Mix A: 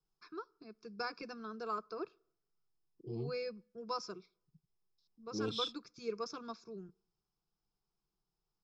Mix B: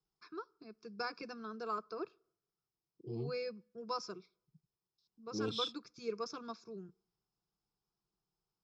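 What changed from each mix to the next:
master: add HPF 44 Hz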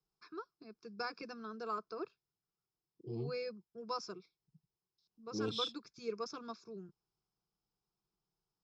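reverb: off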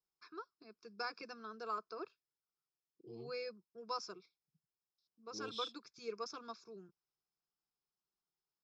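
second voice -5.5 dB; master: add low shelf 290 Hz -11.5 dB

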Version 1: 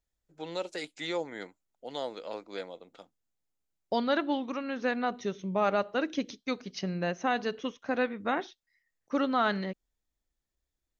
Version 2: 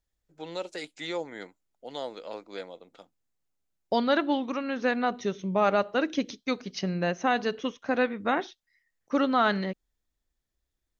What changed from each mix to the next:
second voice +3.5 dB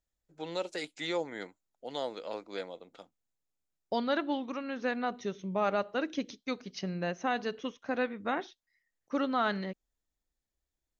second voice -6.0 dB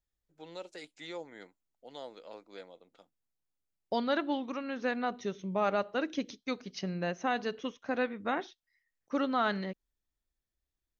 first voice -9.0 dB

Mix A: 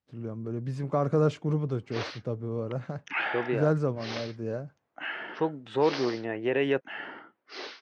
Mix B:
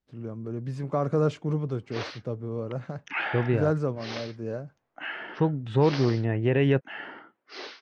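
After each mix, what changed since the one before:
second voice: remove HPF 340 Hz 12 dB/oct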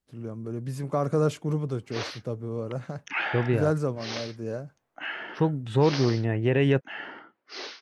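master: remove air absorption 110 m

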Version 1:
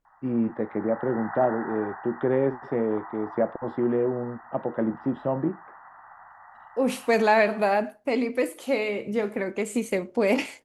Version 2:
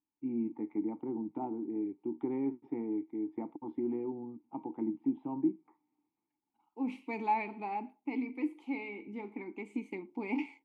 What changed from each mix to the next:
first voice: add low shelf 160 Hz +6.5 dB; background: muted; master: add vowel filter u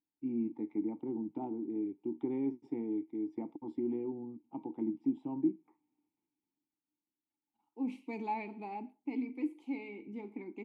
first voice: remove air absorption 370 m; second voice: entry +1.00 s; master: add bell 1400 Hz -9.5 dB 2 oct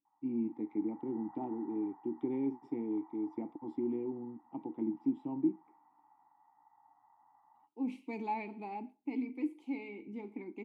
background: unmuted

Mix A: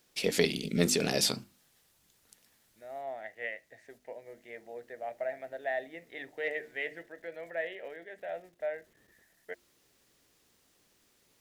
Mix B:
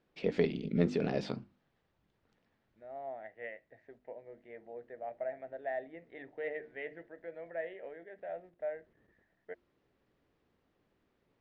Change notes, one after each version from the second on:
master: add tape spacing loss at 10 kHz 44 dB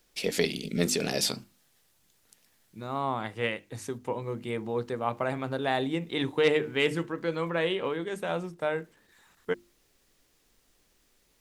second voice: remove double band-pass 1100 Hz, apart 1.5 oct; master: remove tape spacing loss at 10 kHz 44 dB

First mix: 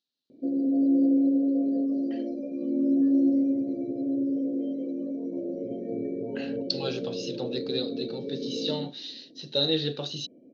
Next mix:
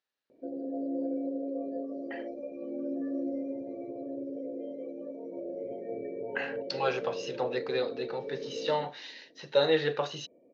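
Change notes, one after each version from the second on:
background -5.5 dB; master: add graphic EQ 125/250/500/1000/2000/4000 Hz -4/-9/+4/+11/+12/-12 dB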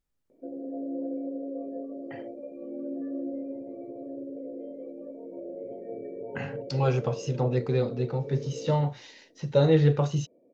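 speech: remove speaker cabinet 470–5800 Hz, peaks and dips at 1700 Hz +7 dB, 2800 Hz +4 dB, 4000 Hz +7 dB; background: add LPF 1100 Hz 6 dB/oct

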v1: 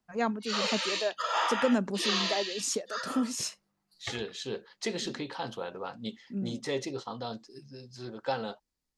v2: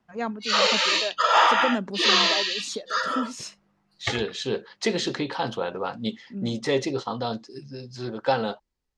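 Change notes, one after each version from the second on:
second voice +9.0 dB; background +11.5 dB; master: add air absorption 56 m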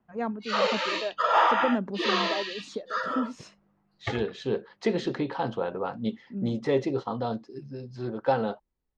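master: add LPF 1100 Hz 6 dB/oct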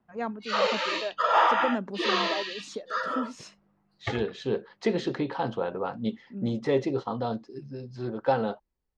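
first voice: add tilt +1.5 dB/oct

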